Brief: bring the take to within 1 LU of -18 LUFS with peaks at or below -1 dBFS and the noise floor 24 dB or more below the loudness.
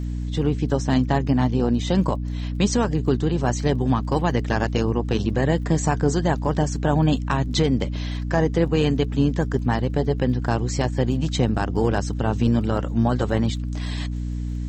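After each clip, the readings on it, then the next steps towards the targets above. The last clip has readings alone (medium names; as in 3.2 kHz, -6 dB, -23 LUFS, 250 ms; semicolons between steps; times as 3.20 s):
tick rate 24 per s; hum 60 Hz; highest harmonic 300 Hz; hum level -24 dBFS; loudness -22.5 LUFS; peak level -7.5 dBFS; loudness target -18.0 LUFS
-> de-click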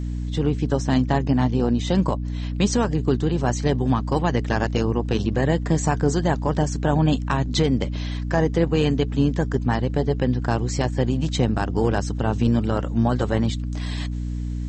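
tick rate 0.068 per s; hum 60 Hz; highest harmonic 300 Hz; hum level -24 dBFS
-> de-hum 60 Hz, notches 5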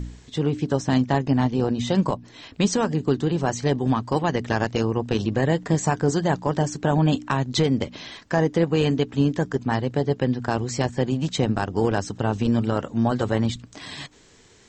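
hum not found; loudness -23.5 LUFS; peak level -9.0 dBFS; loudness target -18.0 LUFS
-> trim +5.5 dB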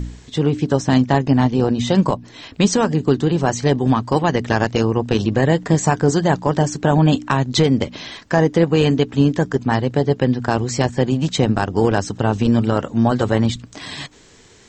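loudness -18.0 LUFS; peak level -3.5 dBFS; noise floor -47 dBFS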